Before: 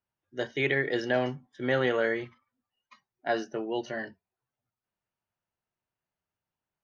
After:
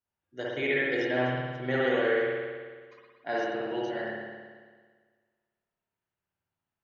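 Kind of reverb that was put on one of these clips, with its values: spring tank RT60 1.6 s, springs 55 ms, chirp 75 ms, DRR -5.5 dB; trim -5.5 dB

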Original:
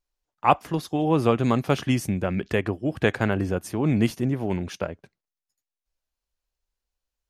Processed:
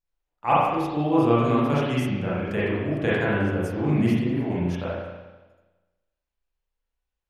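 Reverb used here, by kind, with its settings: spring tank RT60 1.2 s, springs 34/40 ms, chirp 60 ms, DRR -8.5 dB; trim -8.5 dB

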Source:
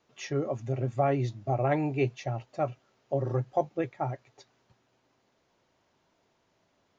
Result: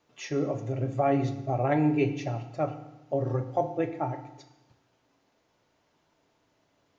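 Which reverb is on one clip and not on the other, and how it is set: FDN reverb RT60 0.95 s, low-frequency decay 1.25×, high-frequency decay 0.9×, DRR 6.5 dB

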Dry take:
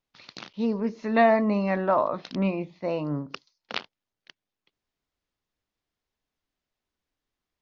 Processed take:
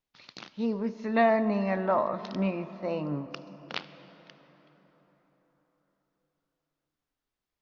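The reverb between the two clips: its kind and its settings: plate-style reverb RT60 4.9 s, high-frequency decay 0.5×, DRR 13 dB; trim -3.5 dB

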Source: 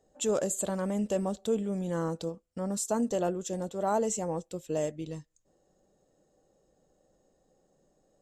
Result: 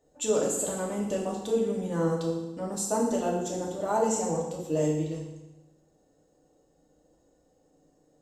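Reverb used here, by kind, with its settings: FDN reverb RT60 1 s, low-frequency decay 1.3×, high-frequency decay 0.95×, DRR -3 dB; trim -2 dB

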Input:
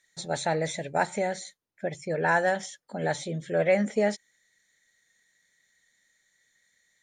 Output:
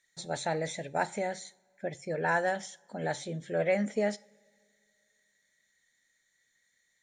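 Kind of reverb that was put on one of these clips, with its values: two-slope reverb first 0.37 s, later 2.4 s, from -22 dB, DRR 17 dB; trim -4.5 dB

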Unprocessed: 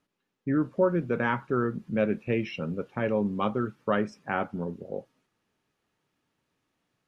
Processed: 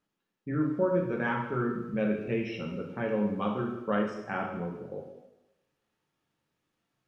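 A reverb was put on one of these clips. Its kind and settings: plate-style reverb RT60 0.93 s, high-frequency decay 0.95×, DRR 0 dB; trim -6 dB

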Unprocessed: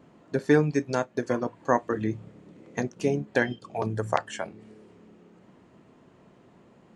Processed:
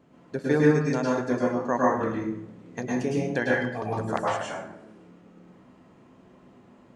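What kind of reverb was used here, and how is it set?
plate-style reverb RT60 0.75 s, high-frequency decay 0.6×, pre-delay 95 ms, DRR -5 dB; trim -4.5 dB

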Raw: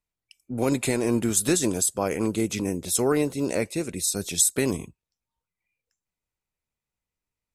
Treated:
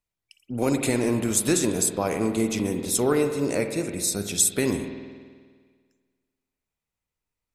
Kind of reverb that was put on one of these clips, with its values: spring tank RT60 1.7 s, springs 49 ms, chirp 20 ms, DRR 6 dB

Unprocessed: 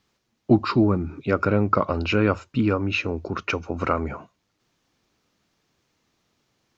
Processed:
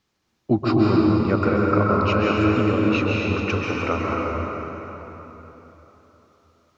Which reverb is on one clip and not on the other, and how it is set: plate-style reverb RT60 3.8 s, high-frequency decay 0.7×, pre-delay 120 ms, DRR -4 dB; trim -3 dB

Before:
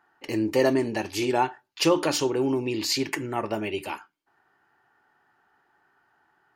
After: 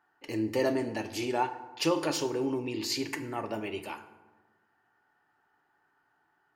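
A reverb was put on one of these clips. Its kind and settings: FDN reverb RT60 1.3 s, low-frequency decay 1.25×, high-frequency decay 0.55×, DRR 9 dB; trim -6.5 dB

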